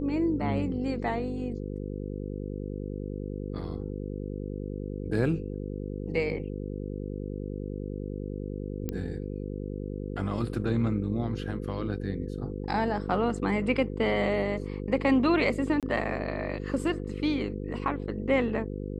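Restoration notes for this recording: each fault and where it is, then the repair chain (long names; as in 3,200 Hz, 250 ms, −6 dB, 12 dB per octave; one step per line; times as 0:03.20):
mains buzz 50 Hz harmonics 10 −35 dBFS
0:08.89: click −18 dBFS
0:15.80–0:15.83: drop-out 27 ms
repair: click removal
hum removal 50 Hz, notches 10
repair the gap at 0:15.80, 27 ms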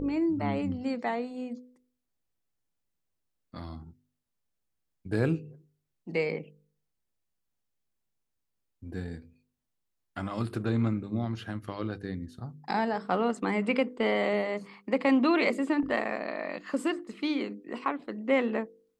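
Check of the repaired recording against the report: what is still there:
none of them is left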